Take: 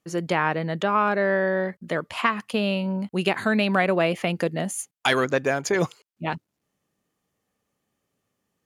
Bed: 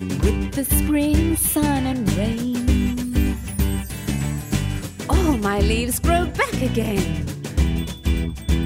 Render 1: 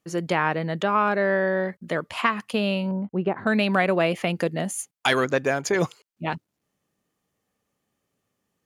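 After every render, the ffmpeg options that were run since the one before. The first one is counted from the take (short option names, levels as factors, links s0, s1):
-filter_complex "[0:a]asettb=1/sr,asplit=3[s0][s1][s2];[s0]atrim=end=2.914[s3];[s1]atrim=start=2.91:end=3.47,asetpts=PTS-STARTPTS,afade=t=in:d=0.004:c=qsin,afade=t=out:st=0.556:d=0.004:c=qsin,lowpass=1000[s4];[s2]atrim=start=3.466[s5];[s3][s4]acrossfade=d=0.004:c1=hsin:c2=qsin[s6];[s6][s5]acrossfade=d=0.004:c1=qsin:c2=hsin"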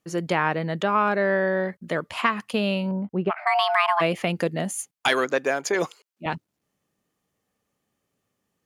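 -filter_complex "[0:a]asplit=3[s0][s1][s2];[s0]afade=t=out:st=3.29:d=0.02[s3];[s1]afreqshift=500,afade=t=in:st=3.29:d=0.02,afade=t=out:st=4:d=0.02[s4];[s2]afade=t=in:st=4:d=0.02[s5];[s3][s4][s5]amix=inputs=3:normalize=0,asettb=1/sr,asplit=3[s6][s7][s8];[s6]atrim=end=5.084[s9];[s7]atrim=start=5.08:end=6.26,asetpts=PTS-STARTPTS,afade=t=in:d=0.004:c=qsin,afade=t=out:st=1.176:d=0.004:c=qsin,highpass=290[s10];[s8]atrim=start=6.256[s11];[s9][s10]acrossfade=d=0.004:c1=hsin:c2=qsin[s12];[s12][s11]acrossfade=d=0.004:c1=qsin:c2=hsin"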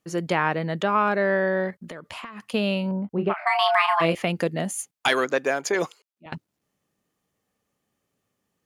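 -filter_complex "[0:a]asettb=1/sr,asplit=3[s0][s1][s2];[s0]atrim=end=1.704[s3];[s1]atrim=start=1.7:end=2.54,asetpts=PTS-STARTPTS,afade=t=in:d=0.004:c=qsin,afade=t=out:st=0.836:d=0.004:c=qsin,acompressor=threshold=0.0224:ratio=16:attack=3.2:release=140:knee=1:detection=peak[s4];[s2]atrim=start=2.536[s5];[s3][s4]acrossfade=d=0.004:c1=hsin:c2=qsin[s6];[s6][s5]acrossfade=d=0.004:c1=qsin:c2=hsin,asettb=1/sr,asplit=3[s7][s8][s9];[s7]atrim=end=3.094[s10];[s8]atrim=start=3.09:end=4.15,asetpts=PTS-STARTPTS,afade=t=in:d=0.004:c=qsin,afade=t=out:st=1.056:d=0.004:c=qsin,asplit=2[s11][s12];[s12]adelay=30,volume=0.473[s13];[s11][s13]amix=inputs=2:normalize=0,atrim=end_sample=46746[s14];[s9]atrim=start=4.146[s15];[s10][s14]acrossfade=d=0.004:c1=hsin:c2=qsin[s16];[s16][s15]acrossfade=d=0.004:c1=qsin:c2=hsin,asplit=2[s17][s18];[s17]atrim=end=6.32,asetpts=PTS-STARTPTS,afade=t=out:st=5.77:d=0.55:silence=0.0891251[s19];[s18]atrim=start=6.32,asetpts=PTS-STARTPTS,afade=t=in:d=0.004:c=hsin:silence=0.0891251[s20];[s19][s20]concat=n=2:v=0:a=1"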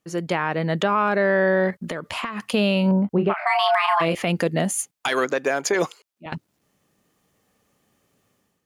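-af "dynaudnorm=f=440:g=3:m=3.35,alimiter=limit=0.282:level=0:latency=1:release=118"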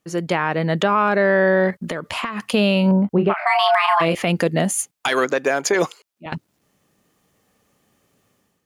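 -af "volume=1.41"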